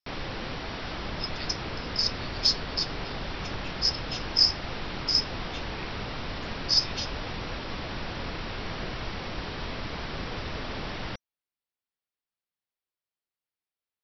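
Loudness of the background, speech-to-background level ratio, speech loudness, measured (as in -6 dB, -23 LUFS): -35.5 LUFS, 8.5 dB, -27.0 LUFS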